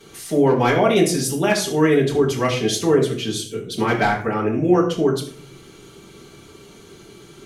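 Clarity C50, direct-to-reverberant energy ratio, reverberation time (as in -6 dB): 7.5 dB, -10.0 dB, 0.55 s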